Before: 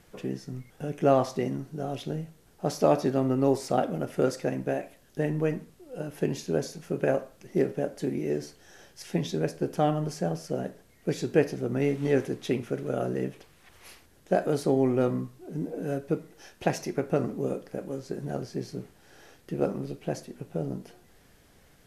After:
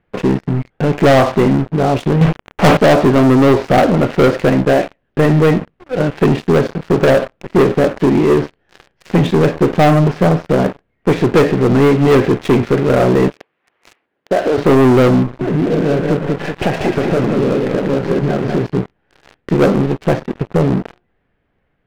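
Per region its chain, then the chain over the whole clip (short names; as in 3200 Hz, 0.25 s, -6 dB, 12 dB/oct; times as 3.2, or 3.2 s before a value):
2.21–2.77 sample leveller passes 5 + brick-wall FIR low-pass 3500 Hz
13.28–14.58 HPF 300 Hz + compressor 2:1, threshold -34 dBFS
15.22–18.67 compressor 3:1, threshold -38 dBFS + sample leveller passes 1 + warbling echo 0.189 s, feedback 49%, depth 77 cents, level -4 dB
whole clip: LPF 2700 Hz 24 dB/oct; sample leveller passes 5; gain +3.5 dB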